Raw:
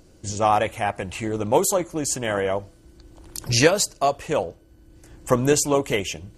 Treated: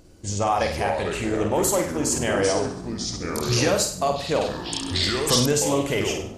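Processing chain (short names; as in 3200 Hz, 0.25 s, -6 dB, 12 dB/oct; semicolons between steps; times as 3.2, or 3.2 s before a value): limiter -13 dBFS, peak gain reduction 9.5 dB; on a send: flutter echo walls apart 8.5 m, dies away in 0.49 s; on the sum: echoes that change speed 0.25 s, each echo -5 st, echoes 3, each echo -6 dB; 4.41–5.46 high shelf 2300 Hz +10 dB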